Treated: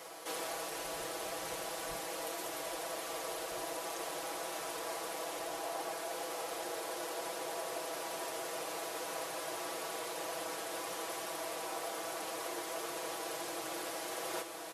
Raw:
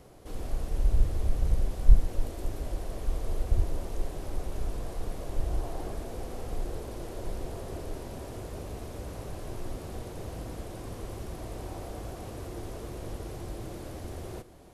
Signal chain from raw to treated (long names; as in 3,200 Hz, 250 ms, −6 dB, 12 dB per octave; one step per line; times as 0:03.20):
high-pass filter 770 Hz 12 dB per octave
comb filter 6.1 ms, depth 80%
on a send: feedback delay with all-pass diffusion 802 ms, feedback 65%, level −10.5 dB
on the sum: speech leveller 0.5 s
level +6 dB